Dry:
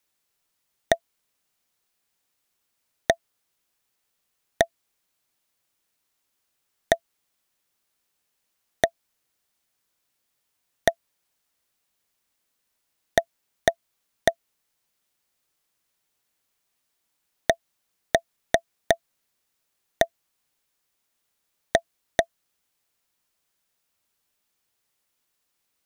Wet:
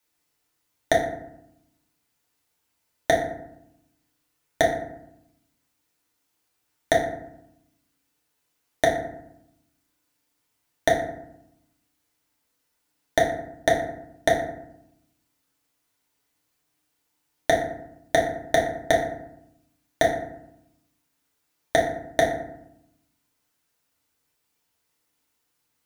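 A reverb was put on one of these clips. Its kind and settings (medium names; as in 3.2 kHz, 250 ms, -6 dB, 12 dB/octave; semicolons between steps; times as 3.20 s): FDN reverb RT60 0.79 s, low-frequency decay 1.5×, high-frequency decay 0.5×, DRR -4 dB; trim -2.5 dB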